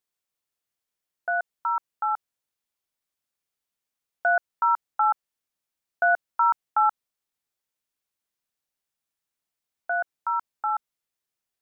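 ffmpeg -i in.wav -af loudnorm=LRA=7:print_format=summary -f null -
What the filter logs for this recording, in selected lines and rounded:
Input Integrated:    -26.4 LUFS
Input True Peak:     -12.9 dBTP
Input LRA:             6.7 LU
Input Threshold:     -36.6 LUFS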